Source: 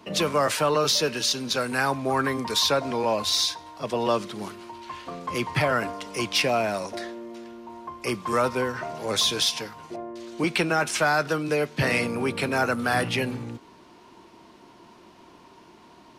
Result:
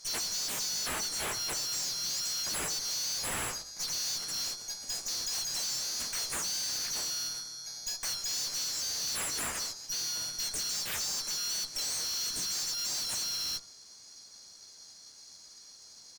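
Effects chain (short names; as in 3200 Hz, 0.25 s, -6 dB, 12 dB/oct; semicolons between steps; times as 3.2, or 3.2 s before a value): band-swap scrambler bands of 4000 Hz; gate -38 dBFS, range -10 dB; compressor 6:1, threshold -33 dBFS, peak gain reduction 14 dB; harmoniser -4 st -15 dB, +3 st -16 dB, +5 st 0 dB; tube stage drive 40 dB, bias 0.55; de-hum 48.34 Hz, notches 30; gain +8 dB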